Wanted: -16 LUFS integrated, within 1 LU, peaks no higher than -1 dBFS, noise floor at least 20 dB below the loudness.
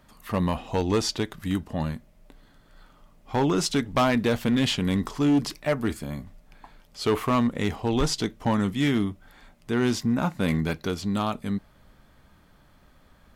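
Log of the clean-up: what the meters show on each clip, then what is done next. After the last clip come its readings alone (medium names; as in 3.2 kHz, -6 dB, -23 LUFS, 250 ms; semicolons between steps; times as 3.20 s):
clipped samples 1.3%; clipping level -16.5 dBFS; loudness -26.0 LUFS; peak level -16.5 dBFS; loudness target -16.0 LUFS
-> clip repair -16.5 dBFS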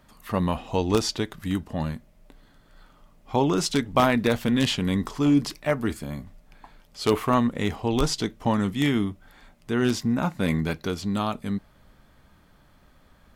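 clipped samples 0.0%; loudness -25.5 LUFS; peak level -7.5 dBFS; loudness target -16.0 LUFS
-> trim +9.5 dB; peak limiter -1 dBFS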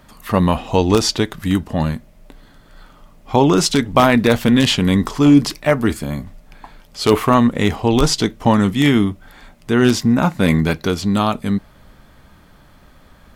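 loudness -16.5 LUFS; peak level -1.0 dBFS; noise floor -48 dBFS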